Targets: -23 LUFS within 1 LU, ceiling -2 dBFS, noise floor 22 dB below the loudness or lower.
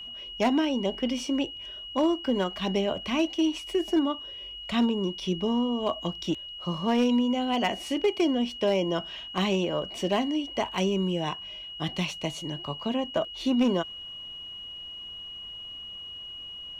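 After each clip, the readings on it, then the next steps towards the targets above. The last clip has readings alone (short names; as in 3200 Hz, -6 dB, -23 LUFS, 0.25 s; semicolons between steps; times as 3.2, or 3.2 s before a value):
clipped 0.3%; flat tops at -17.0 dBFS; steady tone 2900 Hz; tone level -38 dBFS; loudness -28.5 LUFS; peak -17.0 dBFS; loudness target -23.0 LUFS
-> clip repair -17 dBFS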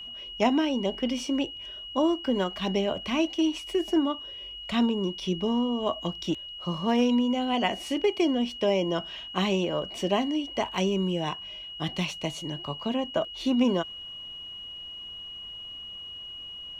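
clipped 0.0%; steady tone 2900 Hz; tone level -38 dBFS
-> notch 2900 Hz, Q 30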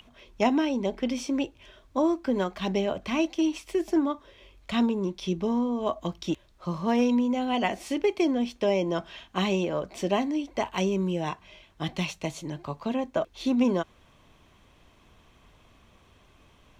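steady tone none; loudness -28.0 LUFS; peak -11.0 dBFS; loudness target -23.0 LUFS
-> gain +5 dB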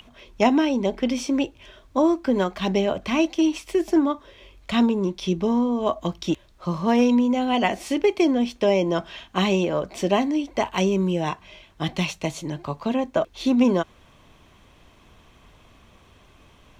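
loudness -23.0 LUFS; peak -6.0 dBFS; noise floor -54 dBFS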